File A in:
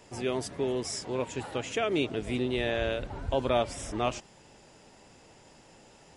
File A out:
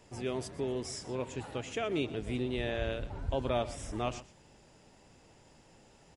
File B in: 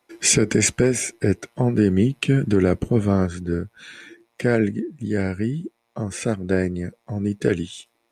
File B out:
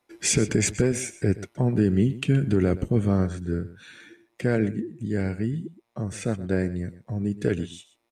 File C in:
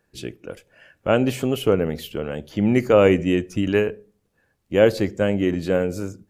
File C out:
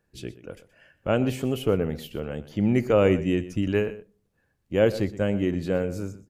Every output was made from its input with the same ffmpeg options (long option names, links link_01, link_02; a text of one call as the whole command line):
ffmpeg -i in.wav -filter_complex "[0:a]lowshelf=frequency=180:gain=6.5,asplit=2[link_01][link_02];[link_02]aecho=0:1:123:0.15[link_03];[link_01][link_03]amix=inputs=2:normalize=0,volume=-6dB" out.wav